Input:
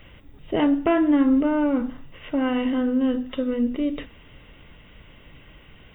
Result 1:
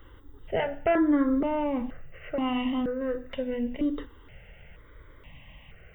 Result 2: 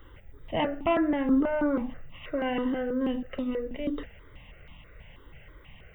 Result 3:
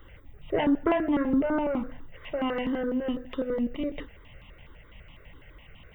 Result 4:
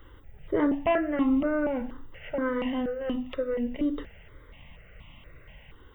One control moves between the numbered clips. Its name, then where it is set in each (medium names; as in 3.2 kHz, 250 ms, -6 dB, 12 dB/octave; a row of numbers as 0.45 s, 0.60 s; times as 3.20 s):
stepped phaser, rate: 2.1 Hz, 6.2 Hz, 12 Hz, 4.2 Hz